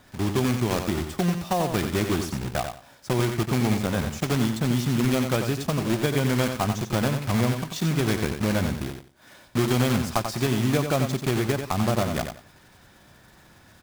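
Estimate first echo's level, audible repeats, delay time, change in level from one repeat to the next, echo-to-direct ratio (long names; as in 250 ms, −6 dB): −7.0 dB, 3, 90 ms, −13.0 dB, −7.0 dB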